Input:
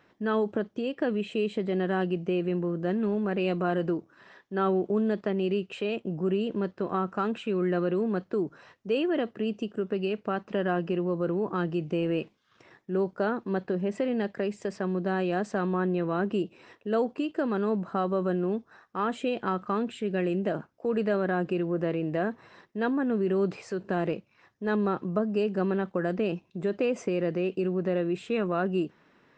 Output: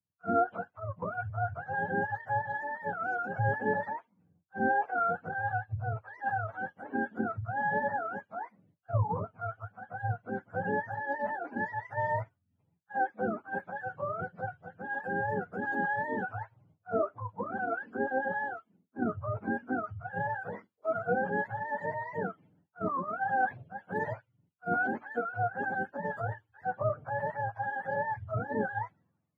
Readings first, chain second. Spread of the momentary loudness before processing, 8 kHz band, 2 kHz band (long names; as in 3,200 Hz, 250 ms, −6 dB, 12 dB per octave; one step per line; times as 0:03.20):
5 LU, can't be measured, +4.5 dB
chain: frequency axis turned over on the octave scale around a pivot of 550 Hz
multiband upward and downward expander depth 100%
level −3 dB